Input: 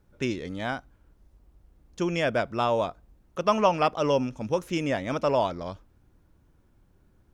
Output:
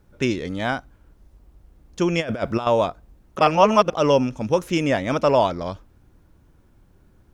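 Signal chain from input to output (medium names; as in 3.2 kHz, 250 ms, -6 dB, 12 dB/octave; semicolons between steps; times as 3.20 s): 2.20–2.67 s: compressor with a negative ratio -30 dBFS, ratio -0.5; 3.39–3.90 s: reverse; trim +6.5 dB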